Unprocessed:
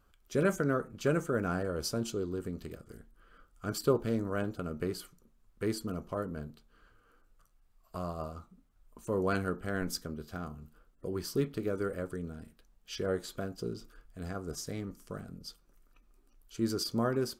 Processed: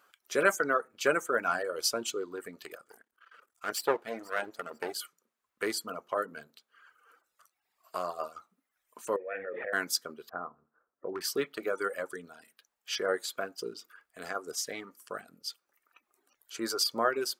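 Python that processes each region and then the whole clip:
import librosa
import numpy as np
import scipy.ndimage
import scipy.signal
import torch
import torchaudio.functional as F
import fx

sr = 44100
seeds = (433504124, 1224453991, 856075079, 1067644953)

y = fx.chain(x, sr, fx.halfwave_gain(db=-12.0),
    fx.echo_feedback(ms=489, feedback_pct=28, wet_db=-20), at=(2.87, 4.96))
y = fx.chain(y, sr, fx.delta_hold(step_db=-49.5),
    fx.formant_cascade(vowel='e'),
    fx.env_flatten(amount_pct=100), at=(9.16, 9.73))
y = fx.chain(y, sr, fx.lowpass(hz=1400.0, slope=24),
    fx.clip_hard(threshold_db=-27.5), at=(10.29, 11.21))
y = fx.dereverb_blind(y, sr, rt60_s=1.1)
y = scipy.signal.sosfilt(scipy.signal.butter(2, 560.0, 'highpass', fs=sr, output='sos'), y)
y = fx.peak_eq(y, sr, hz=1900.0, db=4.0, octaves=0.86)
y = y * librosa.db_to_amplitude(7.5)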